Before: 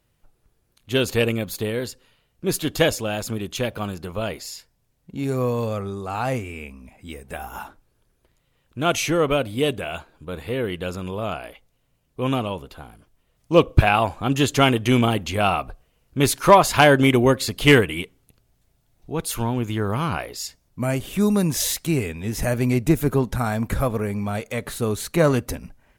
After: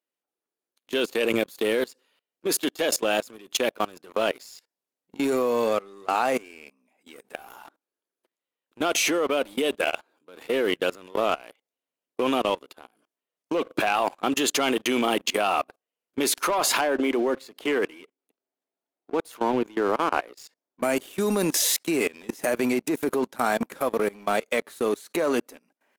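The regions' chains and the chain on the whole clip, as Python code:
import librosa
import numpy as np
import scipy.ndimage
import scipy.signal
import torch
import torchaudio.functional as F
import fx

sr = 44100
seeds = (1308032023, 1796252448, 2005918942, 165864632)

y = fx.chain(x, sr, fx.highpass(hz=210.0, slope=12),
    fx.high_shelf(hz=2400.0, db=-12.0), at=(16.81, 20.83))
y = scipy.signal.sosfilt(scipy.signal.butter(4, 270.0, 'highpass', fs=sr, output='sos'), y)
y = fx.leveller(y, sr, passes=2)
y = fx.level_steps(y, sr, step_db=23)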